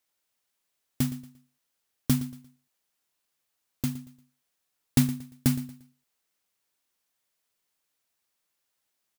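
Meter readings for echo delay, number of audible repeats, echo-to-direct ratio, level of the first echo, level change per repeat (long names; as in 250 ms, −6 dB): 116 ms, 2, −15.5 dB, −16.0 dB, −10.0 dB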